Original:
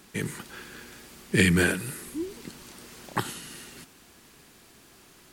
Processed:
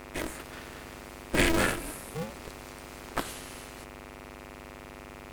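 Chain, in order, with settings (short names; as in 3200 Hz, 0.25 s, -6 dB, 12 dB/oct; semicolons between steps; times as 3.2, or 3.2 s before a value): buzz 100 Hz, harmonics 26, -42 dBFS -3 dB/oct; polarity switched at an audio rate 160 Hz; gain -3.5 dB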